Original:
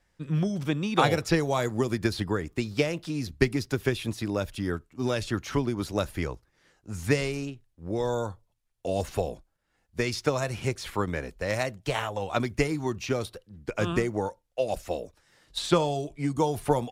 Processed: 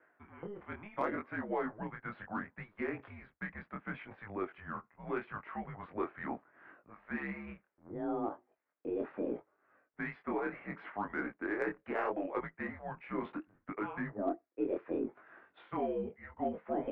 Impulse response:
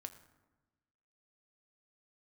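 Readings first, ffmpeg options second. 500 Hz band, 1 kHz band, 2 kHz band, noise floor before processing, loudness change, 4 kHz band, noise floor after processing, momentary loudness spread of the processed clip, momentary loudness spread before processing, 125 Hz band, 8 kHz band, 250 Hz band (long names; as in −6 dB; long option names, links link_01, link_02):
−10.5 dB, −8.0 dB, −8.0 dB, −73 dBFS, −10.5 dB, below −25 dB, −80 dBFS, 11 LU, 10 LU, −20.0 dB, below −40 dB, −9.5 dB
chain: -af "areverse,acompressor=threshold=-38dB:ratio=8,areverse,flanger=delay=19:depth=5.8:speed=0.72,highpass=frequency=520:width_type=q:width=0.5412,highpass=frequency=520:width_type=q:width=1.307,lowpass=frequency=2200:width_type=q:width=0.5176,lowpass=frequency=2200:width_type=q:width=0.7071,lowpass=frequency=2200:width_type=q:width=1.932,afreqshift=-210,aeval=exprs='0.0188*(cos(1*acos(clip(val(0)/0.0188,-1,1)))-cos(1*PI/2))+0.000211*(cos(6*acos(clip(val(0)/0.0188,-1,1)))-cos(6*PI/2))':channel_layout=same,volume=12dB"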